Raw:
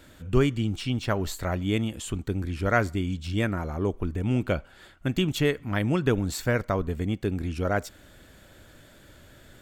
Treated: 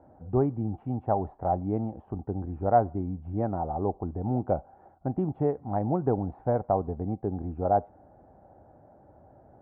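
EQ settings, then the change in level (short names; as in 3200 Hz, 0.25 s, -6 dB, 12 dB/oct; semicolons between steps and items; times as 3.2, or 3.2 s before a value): HPF 62 Hz; ladder low-pass 830 Hz, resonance 80%; air absorption 360 m; +9.0 dB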